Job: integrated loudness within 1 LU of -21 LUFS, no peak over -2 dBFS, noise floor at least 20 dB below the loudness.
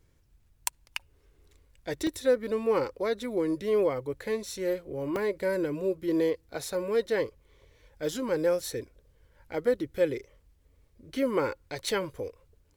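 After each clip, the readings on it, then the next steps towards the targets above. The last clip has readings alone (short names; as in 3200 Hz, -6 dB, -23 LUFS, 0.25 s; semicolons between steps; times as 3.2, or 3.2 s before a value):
dropouts 2; longest dropout 2.0 ms; loudness -30.5 LUFS; peak -7.5 dBFS; loudness target -21.0 LUFS
-> interpolate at 2.07/5.16, 2 ms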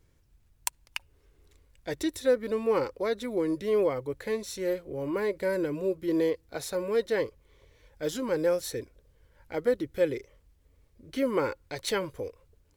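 dropouts 0; loudness -30.5 LUFS; peak -7.5 dBFS; loudness target -21.0 LUFS
-> gain +9.5 dB; limiter -2 dBFS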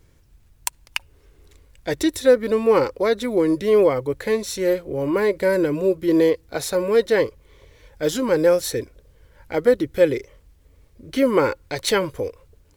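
loudness -21.0 LUFS; peak -2.0 dBFS; noise floor -56 dBFS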